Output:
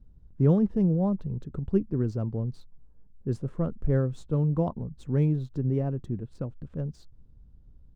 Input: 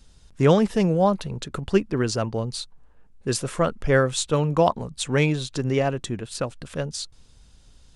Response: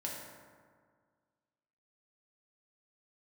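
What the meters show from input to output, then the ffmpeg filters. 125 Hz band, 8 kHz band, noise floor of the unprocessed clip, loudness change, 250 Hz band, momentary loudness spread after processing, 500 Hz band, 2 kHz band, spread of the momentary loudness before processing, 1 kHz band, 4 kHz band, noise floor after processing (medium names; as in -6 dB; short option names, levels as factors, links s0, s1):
-0.5 dB, under -25 dB, -54 dBFS, -4.5 dB, -2.5 dB, 12 LU, -9.5 dB, under -20 dB, 12 LU, -16.0 dB, under -25 dB, -55 dBFS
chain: -af "adynamicsmooth=sensitivity=8:basefreq=3700,firequalizer=gain_entry='entry(140,0);entry(640,-14);entry(2400,-27)':delay=0.05:min_phase=1"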